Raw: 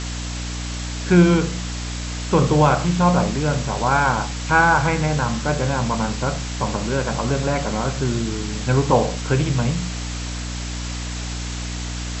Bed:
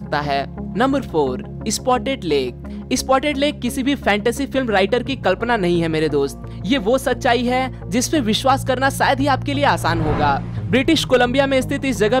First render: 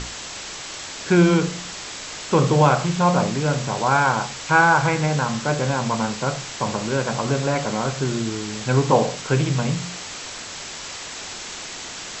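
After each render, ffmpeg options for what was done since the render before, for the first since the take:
-af "bandreject=f=60:t=h:w=6,bandreject=f=120:t=h:w=6,bandreject=f=180:t=h:w=6,bandreject=f=240:t=h:w=6,bandreject=f=300:t=h:w=6"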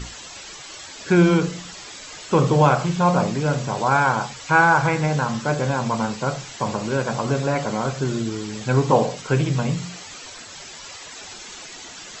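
-af "afftdn=nr=11:nf=-35"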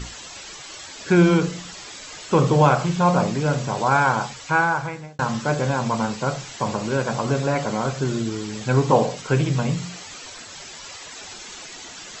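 -filter_complex "[0:a]asplit=2[a][b];[a]atrim=end=5.19,asetpts=PTS-STARTPTS,afade=t=out:st=4.27:d=0.92[c];[b]atrim=start=5.19,asetpts=PTS-STARTPTS,afade=t=in:d=0.004:c=hsin[d];[c][d]concat=n=2:v=0:a=1"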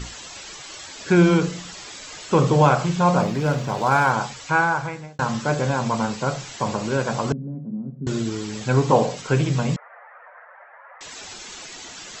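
-filter_complex "[0:a]asettb=1/sr,asplit=3[a][b][c];[a]atrim=end=3.224[d];[b]atrim=start=3.22:end=4.11,asetpts=PTS-STARTPTS,afade=t=in:d=0.004:c=qsin,afade=t=out:st=0.886:d=0.004:c=qsin,adynamicsmooth=sensitivity=6.5:basefreq=4.6k[e];[c]atrim=start=4.106[f];[d][e]acrossfade=d=0.004:c1=hsin:c2=qsin[g];[g][f]acrossfade=d=0.004:c1=qsin:c2=hsin,asettb=1/sr,asplit=3[h][i][j];[h]atrim=end=7.324[k];[i]atrim=start=7.32:end=8.07,asetpts=PTS-STARTPTS,afade=t=in:d=0.004:c=qsin,afade=t=out:st=0.746:d=0.004:c=qsin,asuperpass=centerf=200:order=4:qfactor=1.8[l];[j]atrim=start=8.066[m];[k][l]acrossfade=d=0.004:c1=hsin:c2=qsin[n];[n][m]acrossfade=d=0.004:c1=qsin:c2=hsin,asettb=1/sr,asplit=3[o][p][q];[o]atrim=end=9.764[r];[p]atrim=start=9.76:end=11.01,asetpts=PTS-STARTPTS,afade=t=in:d=0.004:c=qsin,afade=t=out:st=1.246:d=0.004:c=qsin,asuperpass=centerf=1000:order=12:qfactor=0.72[s];[q]atrim=start=11.006[t];[r][s]acrossfade=d=0.004:c1=hsin:c2=qsin[u];[u][t]acrossfade=d=0.004:c1=qsin:c2=hsin"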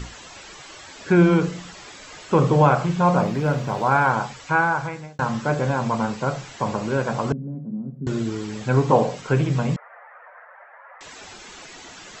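-filter_complex "[0:a]acrossover=split=2600[a][b];[b]acompressor=threshold=-43dB:ratio=4:attack=1:release=60[c];[a][c]amix=inputs=2:normalize=0"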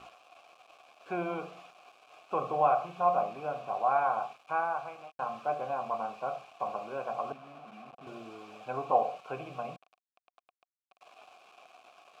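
-filter_complex "[0:a]acrusher=bits=5:mix=0:aa=0.000001,asplit=3[a][b][c];[a]bandpass=f=730:t=q:w=8,volume=0dB[d];[b]bandpass=f=1.09k:t=q:w=8,volume=-6dB[e];[c]bandpass=f=2.44k:t=q:w=8,volume=-9dB[f];[d][e][f]amix=inputs=3:normalize=0"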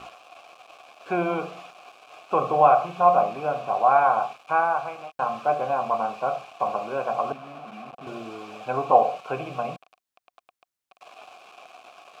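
-af "volume=9dB"

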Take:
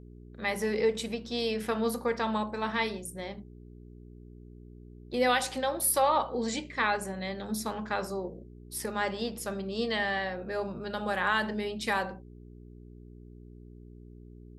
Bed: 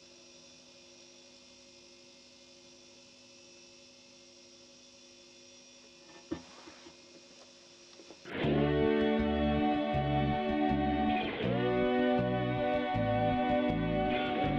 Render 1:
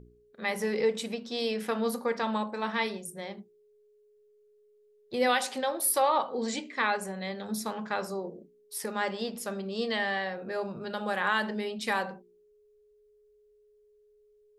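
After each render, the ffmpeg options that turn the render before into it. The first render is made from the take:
-af "bandreject=f=60:t=h:w=4,bandreject=f=120:t=h:w=4,bandreject=f=180:t=h:w=4,bandreject=f=240:t=h:w=4,bandreject=f=300:t=h:w=4,bandreject=f=360:t=h:w=4"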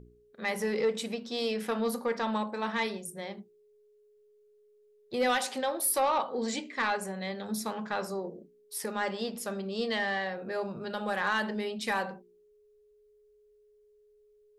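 -af "asoftclip=type=tanh:threshold=-19dB"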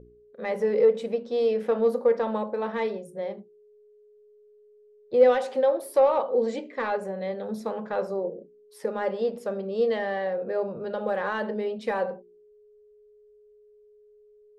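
-af "lowpass=f=1.5k:p=1,equalizer=f=510:t=o:w=0.62:g=13.5"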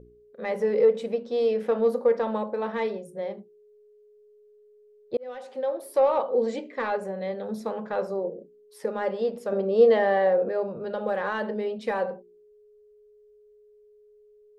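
-filter_complex "[0:a]asettb=1/sr,asplit=3[a][b][c];[a]atrim=end=9.524[d];[b]atrim=start=9.52:end=10.49,asetpts=PTS-STARTPTS,afade=t=in:d=0.004:c=qsin,afade=t=out:st=0.966:d=0.004:c=qsin,equalizer=f=610:w=0.39:g=7.5[e];[c]atrim=start=10.486[f];[d][e]acrossfade=d=0.004:c1=hsin:c2=qsin[g];[g][f]acrossfade=d=0.004:c1=qsin:c2=hsin,asplit=2[h][i];[h]atrim=end=5.17,asetpts=PTS-STARTPTS,afade=t=out:st=5.166:d=0.004:c=hsin[j];[i]atrim=start=5.17,asetpts=PTS-STARTPTS,afade=t=in:d=0.99[k];[j][k]concat=n=2:v=0:a=1"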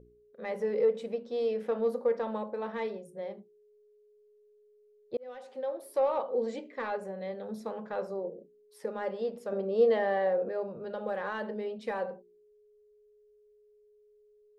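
-af "volume=-6.5dB"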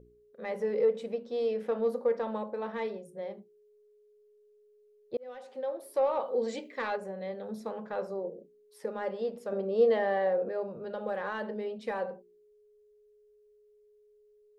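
-filter_complex "[0:a]asettb=1/sr,asplit=3[a][b][c];[a]atrim=end=6.224[d];[b]atrim=start=6.22:end=6.96,asetpts=PTS-STARTPTS,afade=t=in:d=0.004:c=qsin,afade=t=out:st=0.736:d=0.004:c=qsin,highshelf=f=2.2k:g=8.5[e];[c]atrim=start=6.956[f];[d][e]acrossfade=d=0.004:c1=hsin:c2=qsin[g];[g][f]acrossfade=d=0.004:c1=qsin:c2=hsin"

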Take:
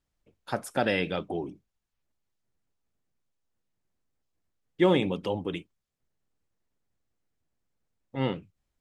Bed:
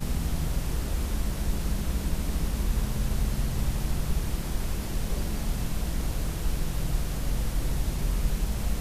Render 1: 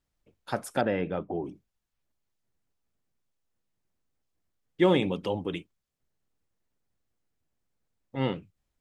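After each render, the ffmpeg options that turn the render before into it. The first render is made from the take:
-filter_complex "[0:a]asettb=1/sr,asplit=3[a][b][c];[a]atrim=end=0.814[d];[b]atrim=start=0.81:end=1.45,asetpts=PTS-STARTPTS,afade=t=in:d=0.004:c=qsin,afade=t=out:st=0.636:d=0.004:c=qsin,lowpass=1.4k[e];[c]atrim=start=1.446[f];[d][e]acrossfade=d=0.004:c1=hsin:c2=qsin[g];[g][f]acrossfade=d=0.004:c1=qsin:c2=hsin"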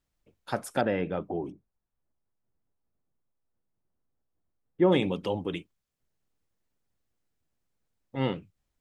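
-filter_complex "[0:a]asplit=3[a][b][c];[a]afade=t=out:st=1.51:d=0.02[d];[b]lowpass=1.2k,afade=t=in:st=1.51:d=0.02,afade=t=out:st=4.91:d=0.02[e];[c]afade=t=in:st=4.91:d=0.02[f];[d][e][f]amix=inputs=3:normalize=0"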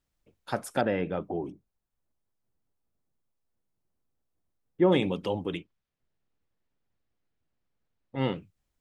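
-filter_complex "[0:a]asettb=1/sr,asplit=3[a][b][c];[a]atrim=end=5.574[d];[b]atrim=start=5.57:end=8.18,asetpts=PTS-STARTPTS,afade=t=in:d=0.004:c=qsin,afade=t=out:st=2.606:d=0.004:c=qsin,lowpass=4k[e];[c]atrim=start=8.176[f];[d][e]acrossfade=d=0.004:c1=hsin:c2=qsin[g];[g][f]acrossfade=d=0.004:c1=qsin:c2=hsin"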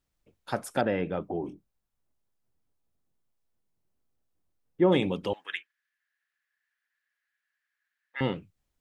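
-filter_complex "[0:a]asettb=1/sr,asplit=3[a][b][c];[a]atrim=end=1.414[d];[b]atrim=start=1.41:end=4.81,asetpts=PTS-STARTPTS,afade=t=in:d=0.004:c=qsin,afade=t=out:st=3.396:d=0.004:c=qsin,asplit=2[e][f];[f]adelay=24,volume=-8dB[g];[e][g]amix=inputs=2:normalize=0,atrim=end_sample=149940[h];[c]atrim=start=4.806[i];[d][h]acrossfade=d=0.004:c1=hsin:c2=qsin[j];[j][i]acrossfade=d=0.004:c1=qsin:c2=hsin,asettb=1/sr,asplit=3[k][l][m];[k]atrim=end=5.334[n];[l]atrim=start=5.33:end=8.21,asetpts=PTS-STARTPTS,afade=t=in:d=0.004:c=qsin,afade=t=out:st=2.876:d=0.004:c=qsin,highpass=f=1.7k:t=q:w=10[o];[m]atrim=start=8.206[p];[n][o]acrossfade=d=0.004:c1=hsin:c2=qsin[q];[q][p]acrossfade=d=0.004:c1=qsin:c2=hsin"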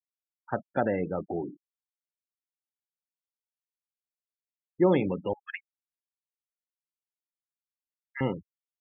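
-filter_complex "[0:a]acrossover=split=2700[a][b];[b]acompressor=threshold=-55dB:ratio=4:attack=1:release=60[c];[a][c]amix=inputs=2:normalize=0,afftfilt=real='re*gte(hypot(re,im),0.0224)':imag='im*gte(hypot(re,im),0.0224)':win_size=1024:overlap=0.75"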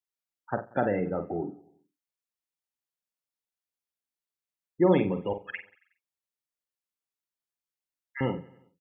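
-filter_complex "[0:a]asplit=2[a][b];[b]adelay=48,volume=-8.5dB[c];[a][c]amix=inputs=2:normalize=0,aecho=1:1:92|184|276|368:0.0891|0.049|0.027|0.0148"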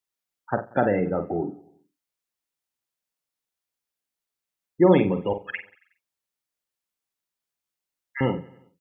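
-af "volume=5dB"

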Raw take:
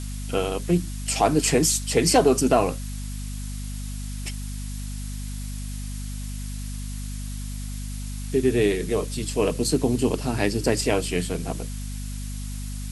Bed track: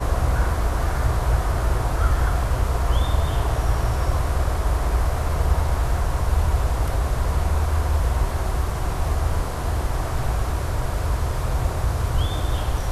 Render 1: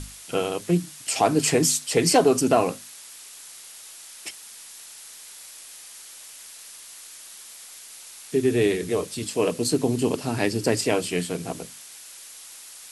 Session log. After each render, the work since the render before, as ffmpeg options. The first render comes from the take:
-af "bandreject=f=50:t=h:w=6,bandreject=f=100:t=h:w=6,bandreject=f=150:t=h:w=6,bandreject=f=200:t=h:w=6,bandreject=f=250:t=h:w=6"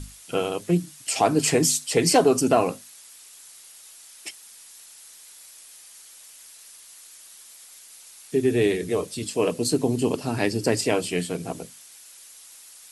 -af "afftdn=nr=6:nf=-44"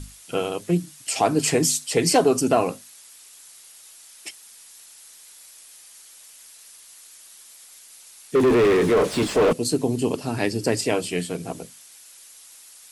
-filter_complex "[0:a]asettb=1/sr,asplit=3[a][b][c];[a]atrim=end=8.354[d];[b]atrim=start=8.35:end=9.53,asetpts=PTS-STARTPTS,afade=t=in:d=0.004:c=qsin,afade=t=out:st=1.176:d=0.004:c=qsin,asplit=2[e][f];[f]highpass=f=720:p=1,volume=34dB,asoftclip=type=tanh:threshold=-9.5dB[g];[e][g]amix=inputs=2:normalize=0,lowpass=f=1k:p=1,volume=-6dB[h];[c]atrim=start=9.526[i];[d][h]acrossfade=d=0.004:c1=hsin:c2=qsin[j];[j][i]acrossfade=d=0.004:c1=qsin:c2=hsin"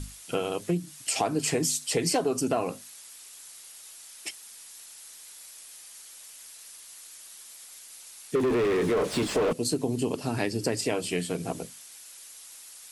-af "acompressor=threshold=-25dB:ratio=3"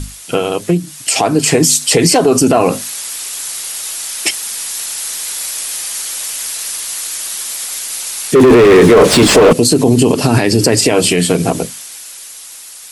-af "dynaudnorm=f=230:g=17:m=12dB,alimiter=level_in=13.5dB:limit=-1dB:release=50:level=0:latency=1"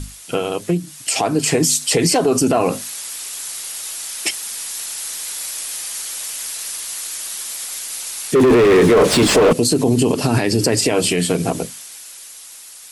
-af "volume=-5.5dB"

